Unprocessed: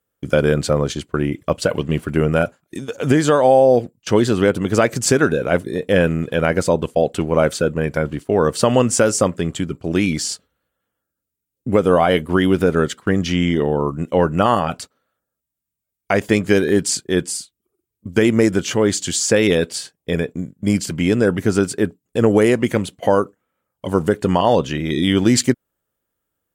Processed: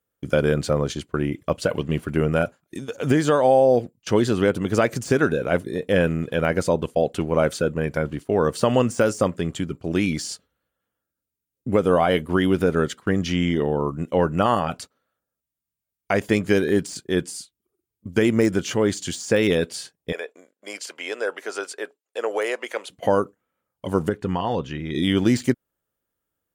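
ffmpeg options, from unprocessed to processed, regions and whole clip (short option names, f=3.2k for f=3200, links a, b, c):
-filter_complex "[0:a]asettb=1/sr,asplit=3[a][b][c];[a]atrim=end=20.124[d];[b]atrim=start=20.12:end=22.9,asetpts=PTS-STARTPTS,afade=t=in:d=0.004:c=qsin,afade=t=out:st=2.776:d=0.004:c=qsin,highpass=f=510:w=0.5412,highpass=f=510:w=1.3066,highshelf=f=11k:g=-11.5[e];[c]atrim=start=22.896[f];[d][e]acrossfade=d=0.004:c1=hsin:c2=qsin[g];[g][f]acrossfade=d=0.004:c1=qsin:c2=hsin,asettb=1/sr,asplit=3[h][i][j];[h]atrim=end=24.094[k];[i]atrim=start=24.09:end=24.95,asetpts=PTS-STARTPTS,afade=t=in:d=0.004:c=qsin,afade=t=out:st=0.856:d=0.004:c=qsin,lowpass=f=2.1k:p=1,equalizer=f=420:w=0.35:g=-4.5,bandreject=f=600:w=6.6[l];[j]atrim=start=24.946[m];[k][l]acrossfade=d=0.004:c1=hsin:c2=qsin[n];[n][m]acrossfade=d=0.004:c1=qsin:c2=hsin,bandreject=f=7.8k:w=23,deesser=0.45,volume=-4dB"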